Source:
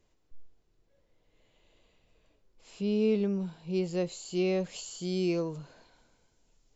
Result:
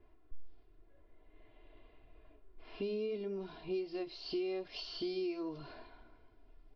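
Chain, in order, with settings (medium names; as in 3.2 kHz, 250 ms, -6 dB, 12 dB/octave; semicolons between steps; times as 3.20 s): comb 2.9 ms, depth 97%; level-controlled noise filter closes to 1.7 kHz, open at -29.5 dBFS; compression 8:1, threshold -39 dBFS, peak gain reduction 18 dB; steep low-pass 5.4 kHz 96 dB/octave; flange 0.85 Hz, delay 4.6 ms, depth 3 ms, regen -77%; trim +7.5 dB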